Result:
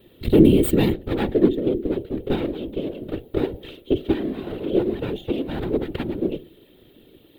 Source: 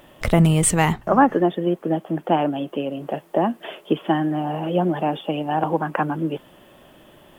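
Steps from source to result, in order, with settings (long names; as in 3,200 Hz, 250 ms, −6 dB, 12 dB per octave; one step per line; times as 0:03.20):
lower of the sound and its delayed copy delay 2.2 ms
high-shelf EQ 4,300 Hz +8.5 dB
hum removal 68.89 Hz, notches 12
random phases in short frames
drawn EQ curve 150 Hz 0 dB, 350 Hz +6 dB, 910 Hz −19 dB, 1,700 Hz −14 dB, 3,800 Hz −4 dB, 5,700 Hz −28 dB, 15,000 Hz −8 dB
level +1 dB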